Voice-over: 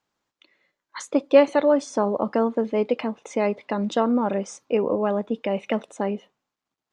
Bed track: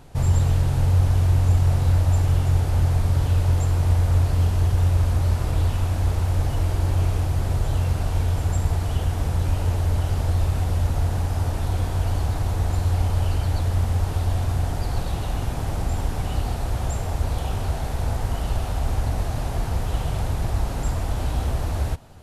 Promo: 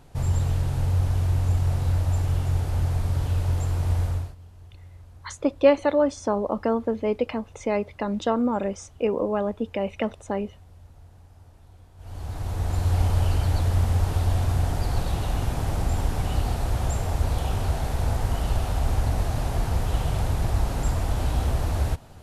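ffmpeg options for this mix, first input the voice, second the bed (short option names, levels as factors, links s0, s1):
-filter_complex "[0:a]adelay=4300,volume=0.794[s0];[1:a]volume=13.3,afade=t=out:st=4.03:d=0.32:silence=0.0749894,afade=t=in:st=11.97:d=1.04:silence=0.0446684[s1];[s0][s1]amix=inputs=2:normalize=0"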